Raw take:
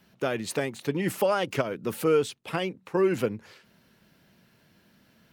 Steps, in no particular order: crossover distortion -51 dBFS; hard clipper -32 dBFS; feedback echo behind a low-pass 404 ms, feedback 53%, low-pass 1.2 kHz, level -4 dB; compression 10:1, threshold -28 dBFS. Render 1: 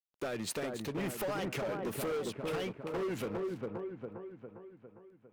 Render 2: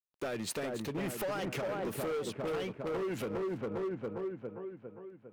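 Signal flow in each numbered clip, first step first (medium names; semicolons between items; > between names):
compression > crossover distortion > feedback echo behind a low-pass > hard clipper; crossover distortion > feedback echo behind a low-pass > compression > hard clipper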